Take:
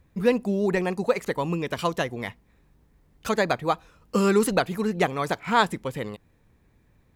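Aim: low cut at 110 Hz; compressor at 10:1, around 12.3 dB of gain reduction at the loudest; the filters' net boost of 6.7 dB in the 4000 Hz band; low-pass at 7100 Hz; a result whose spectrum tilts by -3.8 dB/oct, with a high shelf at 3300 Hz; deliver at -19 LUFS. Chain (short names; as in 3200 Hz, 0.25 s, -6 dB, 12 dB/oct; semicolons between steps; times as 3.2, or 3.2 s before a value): HPF 110 Hz; LPF 7100 Hz; high shelf 3300 Hz +3.5 dB; bell 4000 Hz +6 dB; compressor 10:1, threshold -27 dBFS; gain +14 dB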